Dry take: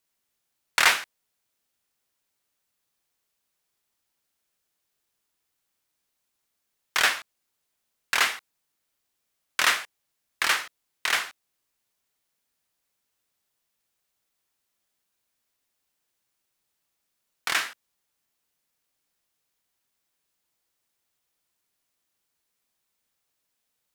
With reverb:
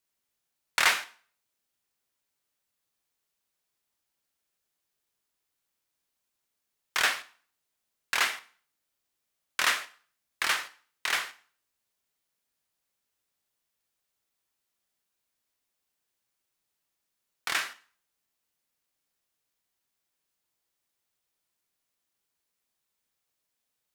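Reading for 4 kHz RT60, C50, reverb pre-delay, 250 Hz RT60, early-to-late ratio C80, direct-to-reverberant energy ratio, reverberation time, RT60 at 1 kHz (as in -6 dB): 0.45 s, 17.5 dB, 5 ms, 0.50 s, 21.5 dB, 11.5 dB, 0.45 s, 0.45 s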